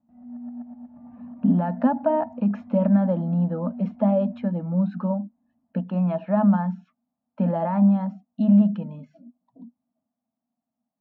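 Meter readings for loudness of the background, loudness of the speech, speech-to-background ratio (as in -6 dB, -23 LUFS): -41.0 LUFS, -23.0 LUFS, 18.0 dB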